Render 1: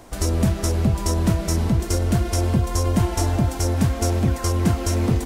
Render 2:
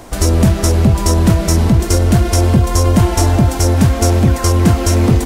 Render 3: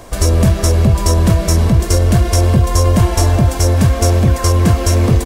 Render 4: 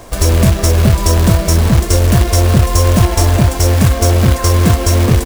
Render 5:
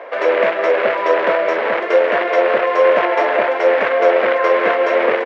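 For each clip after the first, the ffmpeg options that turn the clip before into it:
-af "acontrast=82,volume=1.33"
-af "aecho=1:1:1.8:0.32,volume=0.891"
-af "acrusher=bits=3:mode=log:mix=0:aa=0.000001,volume=1.12"
-af "highpass=f=490:w=0.5412,highpass=f=490:w=1.3066,equalizer=f=520:t=q:w=4:g=5,equalizer=f=750:t=q:w=4:g=-4,equalizer=f=1100:t=q:w=4:g=-4,equalizer=f=2000:t=q:w=4:g=3,lowpass=f=2300:w=0.5412,lowpass=f=2300:w=1.3066,volume=2.11"

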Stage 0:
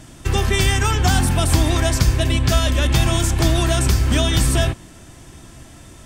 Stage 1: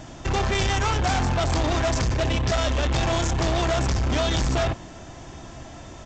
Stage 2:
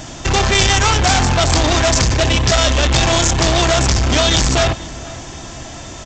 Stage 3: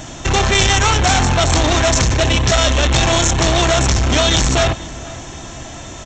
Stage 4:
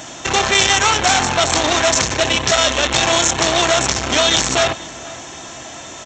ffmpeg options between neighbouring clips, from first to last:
-af "equalizer=f=730:w=1.1:g=8,aresample=16000,asoftclip=type=tanh:threshold=0.1,aresample=44100"
-filter_complex "[0:a]highshelf=f=2700:g=9.5,asplit=2[s0][s1];[s1]adelay=484,volume=0.126,highshelf=f=4000:g=-10.9[s2];[s0][s2]amix=inputs=2:normalize=0,volume=2.37"
-af "bandreject=f=4800:w=7.5"
-af "highpass=f=440:p=1,volume=1.19"

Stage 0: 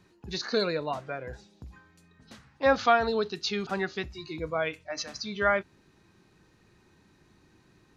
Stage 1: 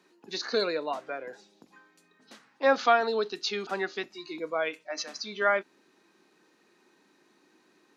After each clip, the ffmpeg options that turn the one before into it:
-af "highpass=f=250:w=0.5412,highpass=f=250:w=1.3066"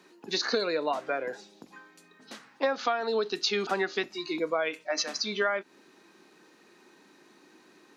-af "acompressor=threshold=0.0316:ratio=16,volume=2.11"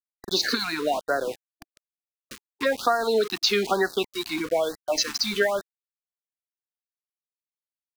-af "aeval=exprs='val(0)*gte(abs(val(0)),0.0126)':c=same,afftfilt=real='re*(1-between(b*sr/1024,460*pow(2800/460,0.5+0.5*sin(2*PI*1.1*pts/sr))/1.41,460*pow(2800/460,0.5+0.5*sin(2*PI*1.1*pts/sr))*1.41))':imag='im*(1-between(b*sr/1024,460*pow(2800/460,0.5+0.5*sin(2*PI*1.1*pts/sr))/1.41,460*pow(2800/460,0.5+0.5*sin(2*PI*1.1*pts/sr))*1.41))':win_size=1024:overlap=0.75,volume=2"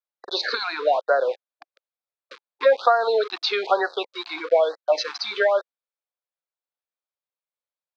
-af "highpass=f=490:w=0.5412,highpass=f=490:w=1.3066,equalizer=f=530:t=q:w=4:g=6,equalizer=f=1900:t=q:w=4:g=-6,equalizer=f=2900:t=q:w=4:g=-8,lowpass=f=3800:w=0.5412,lowpass=f=3800:w=1.3066,volume=1.68"

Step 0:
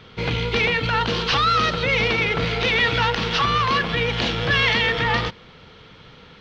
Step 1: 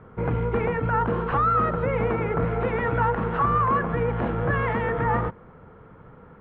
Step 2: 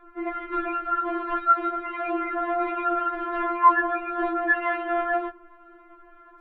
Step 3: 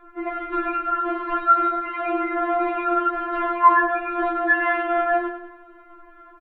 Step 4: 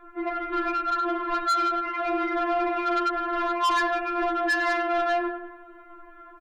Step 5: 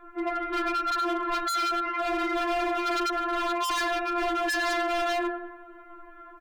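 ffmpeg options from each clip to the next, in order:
-af "lowpass=f=1400:w=0.5412,lowpass=f=1400:w=1.3066"
-af "afftfilt=real='re*4*eq(mod(b,16),0)':imag='im*4*eq(mod(b,16),0)':win_size=2048:overlap=0.75,volume=1.5"
-filter_complex "[0:a]asplit=2[s0][s1];[s1]adelay=43,volume=0.282[s2];[s0][s2]amix=inputs=2:normalize=0,asplit=2[s3][s4];[s4]aecho=0:1:97|194|291|388|485:0.316|0.158|0.0791|0.0395|0.0198[s5];[s3][s5]amix=inputs=2:normalize=0,volume=1.33"
-af "asoftclip=type=tanh:threshold=0.1"
-af "bandreject=f=189.6:t=h:w=4,bandreject=f=379.2:t=h:w=4,bandreject=f=568.8:t=h:w=4,bandreject=f=758.4:t=h:w=4,bandreject=f=948:t=h:w=4,bandreject=f=1137.6:t=h:w=4,bandreject=f=1327.2:t=h:w=4,bandreject=f=1516.8:t=h:w=4,bandreject=f=1706.4:t=h:w=4,bandreject=f=1896:t=h:w=4,bandreject=f=2085.6:t=h:w=4,bandreject=f=2275.2:t=h:w=4,bandreject=f=2464.8:t=h:w=4,bandreject=f=2654.4:t=h:w=4,bandreject=f=2844:t=h:w=4,bandreject=f=3033.6:t=h:w=4,bandreject=f=3223.2:t=h:w=4,bandreject=f=3412.8:t=h:w=4,bandreject=f=3602.4:t=h:w=4,bandreject=f=3792:t=h:w=4,bandreject=f=3981.6:t=h:w=4,bandreject=f=4171.2:t=h:w=4,bandreject=f=4360.8:t=h:w=4,bandreject=f=4550.4:t=h:w=4,bandreject=f=4740:t=h:w=4,bandreject=f=4929.6:t=h:w=4,bandreject=f=5119.2:t=h:w=4,bandreject=f=5308.8:t=h:w=4,bandreject=f=5498.4:t=h:w=4,bandreject=f=5688:t=h:w=4,bandreject=f=5877.6:t=h:w=4,bandreject=f=6067.2:t=h:w=4,bandreject=f=6256.8:t=h:w=4,bandreject=f=6446.4:t=h:w=4,bandreject=f=6636:t=h:w=4,aeval=exprs='0.0668*(abs(mod(val(0)/0.0668+3,4)-2)-1)':c=same"

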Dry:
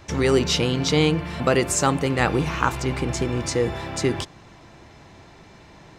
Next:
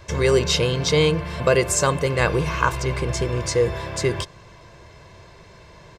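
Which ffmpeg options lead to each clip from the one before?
-af "aecho=1:1:1.9:0.66"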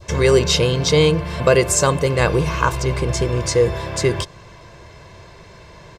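-af "adynamicequalizer=threshold=0.0178:dfrequency=1800:dqfactor=0.86:tfrequency=1800:tqfactor=0.86:attack=5:release=100:ratio=0.375:range=2:mode=cutabove:tftype=bell,volume=1.58"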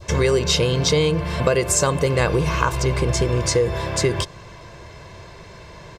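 -af "acompressor=threshold=0.158:ratio=6,volume=1.19"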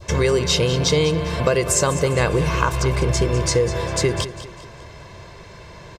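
-af "aecho=1:1:200|400|600|800:0.211|0.0888|0.0373|0.0157"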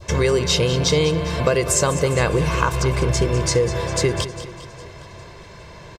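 -af "aecho=1:1:406|812|1218|1624:0.106|0.0508|0.0244|0.0117"

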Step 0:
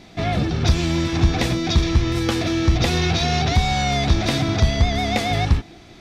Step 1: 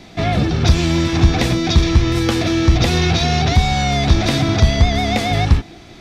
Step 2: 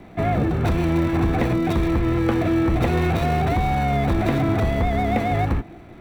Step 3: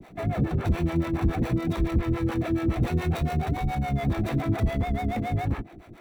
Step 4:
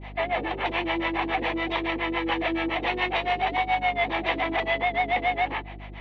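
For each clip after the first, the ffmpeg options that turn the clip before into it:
-filter_complex "[0:a]acrossover=split=330[s0][s1];[s1]acompressor=threshold=0.1:ratio=6[s2];[s0][s2]amix=inputs=2:normalize=0,volume=1.68"
-filter_complex "[0:a]equalizer=f=3800:t=o:w=1.8:g=-7,acrossover=split=260|3000[s0][s1][s2];[s0]asoftclip=type=tanh:threshold=0.141[s3];[s2]acrusher=samples=26:mix=1:aa=0.000001[s4];[s3][s1][s4]amix=inputs=3:normalize=0,volume=0.841"
-filter_complex "[0:a]acrossover=split=330|4800[s0][s1][s2];[s1]alimiter=limit=0.075:level=0:latency=1:release=20[s3];[s2]acompressor=mode=upward:threshold=0.00141:ratio=2.5[s4];[s0][s3][s4]amix=inputs=3:normalize=0,acrossover=split=420[s5][s6];[s5]aeval=exprs='val(0)*(1-1/2+1/2*cos(2*PI*7.1*n/s))':c=same[s7];[s6]aeval=exprs='val(0)*(1-1/2-1/2*cos(2*PI*7.1*n/s))':c=same[s8];[s7][s8]amix=inputs=2:normalize=0"
-af "highpass=f=410:w=0.5412,highpass=f=410:w=1.3066,equalizer=f=420:t=q:w=4:g=-6,equalizer=f=590:t=q:w=4:g=-4,equalizer=f=900:t=q:w=4:g=6,equalizer=f=1400:t=q:w=4:g=-8,equalizer=f=2000:t=q:w=4:g=7,equalizer=f=3000:t=q:w=4:g=10,lowpass=f=3800:w=0.5412,lowpass=f=3800:w=1.3066,aeval=exprs='val(0)+0.00447*(sin(2*PI*50*n/s)+sin(2*PI*2*50*n/s)/2+sin(2*PI*3*50*n/s)/3+sin(2*PI*4*50*n/s)/4+sin(2*PI*5*50*n/s)/5)':c=same,volume=2.51" -ar 24000 -c:a libmp3lame -b:a 48k

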